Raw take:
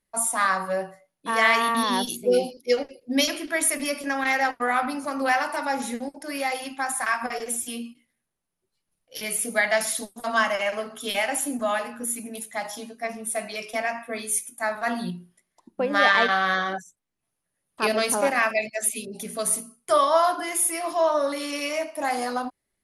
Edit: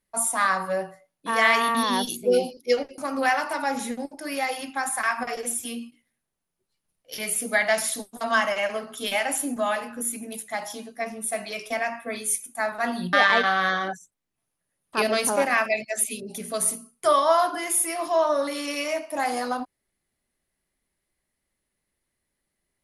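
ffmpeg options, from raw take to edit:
-filter_complex "[0:a]asplit=3[s0][s1][s2];[s0]atrim=end=2.982[s3];[s1]atrim=start=5.008:end=15.162[s4];[s2]atrim=start=15.978[s5];[s3][s4]acrossfade=d=0.004:c1=hsin:c2=hsin[s6];[s6][s5]acrossfade=d=0.004:c1=hsin:c2=hsin"

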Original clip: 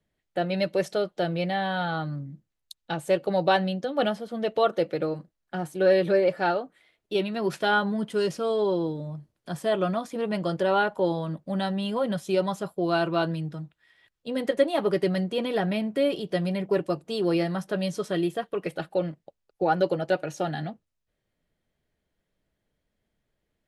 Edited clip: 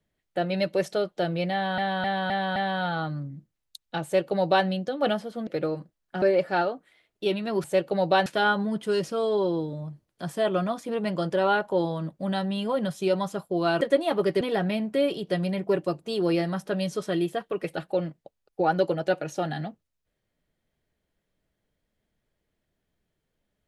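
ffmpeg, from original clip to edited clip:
-filter_complex "[0:a]asplit=11[s0][s1][s2][s3][s4][s5][s6][s7][s8][s9][s10];[s0]atrim=end=1.782[s11];[s1]atrim=start=1.518:end=1.782[s12];[s2]atrim=start=1.518:end=1.782[s13];[s3]atrim=start=1.518:end=1.782[s14];[s4]atrim=start=1.518:end=4.432[s15];[s5]atrim=start=4.858:end=5.612[s16];[s6]atrim=start=6.108:end=7.532[s17];[s7]atrim=start=2.998:end=3.622[s18];[s8]atrim=start=7.528:end=13.082[s19];[s9]atrim=start=14.478:end=15.082[s20];[s10]atrim=start=15.428[s21];[s11][s12]acrossfade=d=0.004:c1=hsin:c2=hsin[s22];[s22][s13]acrossfade=d=0.004:c1=hsin:c2=hsin[s23];[s23][s14]acrossfade=d=0.004:c1=hsin:c2=hsin[s24];[s24][s15]acrossfade=d=0.004:c1=hsin:c2=hsin[s25];[s25][s16]acrossfade=d=0.004:c1=hsin:c2=hsin[s26];[s26][s17]acrossfade=d=0.004:c1=hsin:c2=hsin[s27];[s27][s18]acrossfade=d=0.004:c1=hsin:c2=hsin[s28];[s28][s19]acrossfade=d=0.004:c1=hsin:c2=hsin[s29];[s29][s20]acrossfade=d=0.004:c1=hsin:c2=hsin[s30];[s30][s21]acrossfade=d=0.004:c1=hsin:c2=hsin"

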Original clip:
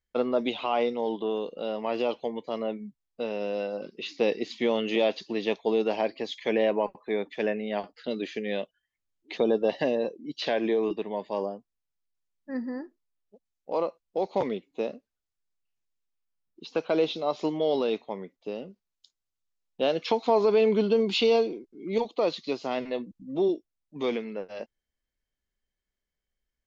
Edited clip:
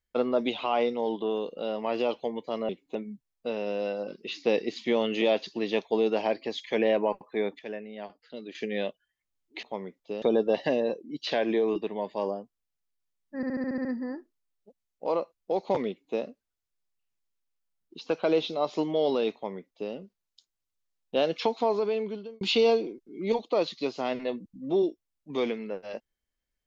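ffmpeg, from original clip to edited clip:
-filter_complex "[0:a]asplit=15[s0][s1][s2][s3][s4][s5][s6][s7][s8][s9][s10][s11][s12][s13][s14];[s0]atrim=end=2.692[s15];[s1]atrim=start=14.538:end=14.802[s16];[s2]atrim=start=2.688:end=7.332[s17];[s3]atrim=start=7.328:end=8.292,asetpts=PTS-STARTPTS,volume=0.335[s18];[s4]atrim=start=8.288:end=9.372[s19];[s5]atrim=start=17.998:end=18.592[s20];[s6]atrim=start=9.368:end=12.582[s21];[s7]atrim=start=12.508:end=12.582[s22];[s8]atrim=start=12.508:end=12.582[s23];[s9]atrim=start=12.508:end=12.582[s24];[s10]atrim=start=12.508:end=12.582[s25];[s11]atrim=start=12.508:end=12.582[s26];[s12]atrim=start=12.508:end=12.582[s27];[s13]atrim=start=12.508:end=21.07,asetpts=PTS-STARTPTS,afade=t=out:st=7.472:d=1.09[s28];[s14]atrim=start=21.07,asetpts=PTS-STARTPTS,afade=t=in:d=0.004:c=hsin[s29];[s15][s16]acrossfade=d=0.004:c1=hsin:c2=hsin[s30];[s30][s17]acrossfade=d=0.004:c1=hsin:c2=hsin[s31];[s31][s18]acrossfade=d=0.004:c1=hsin:c2=hsin[s32];[s32][s19]acrossfade=d=0.004:c1=hsin:c2=hsin[s33];[s33][s20]acrossfade=d=0.004:c1=hsin:c2=hsin[s34];[s34][s21]acrossfade=d=0.004:c1=hsin:c2=hsin[s35];[s35][s22]acrossfade=d=0.004:c1=hsin:c2=hsin[s36];[s36][s23]acrossfade=d=0.004:c1=hsin:c2=hsin[s37];[s37][s24]acrossfade=d=0.004:c1=hsin:c2=hsin[s38];[s38][s25]acrossfade=d=0.004:c1=hsin:c2=hsin[s39];[s39][s26]acrossfade=d=0.004:c1=hsin:c2=hsin[s40];[s40][s27]acrossfade=d=0.004:c1=hsin:c2=hsin[s41];[s28][s29]concat=n=2:v=0:a=1[s42];[s41][s42]acrossfade=d=0.004:c1=hsin:c2=hsin"

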